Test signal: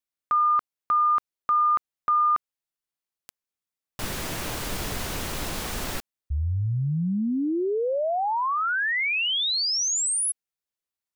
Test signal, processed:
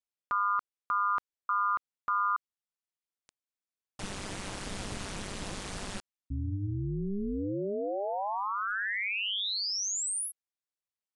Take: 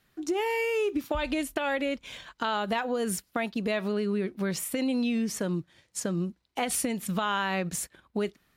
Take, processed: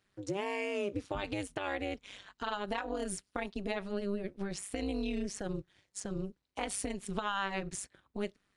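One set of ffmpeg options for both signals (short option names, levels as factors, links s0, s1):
-af "tremolo=f=200:d=0.947,aresample=22050,aresample=44100,volume=0.668"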